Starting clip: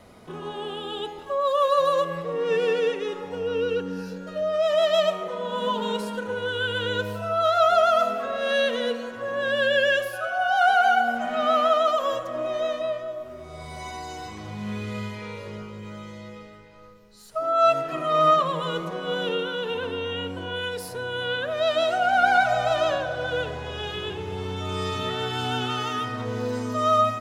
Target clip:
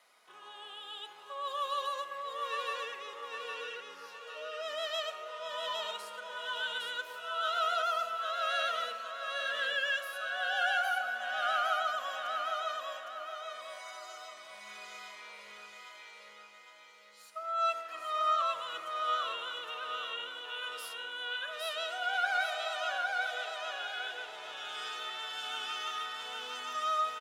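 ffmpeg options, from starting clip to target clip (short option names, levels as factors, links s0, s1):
-filter_complex "[0:a]highpass=1200,asplit=2[s0][s1];[s1]aecho=0:1:810|1620|2430|3240|4050:0.708|0.269|0.102|0.0388|0.0148[s2];[s0][s2]amix=inputs=2:normalize=0,volume=0.422"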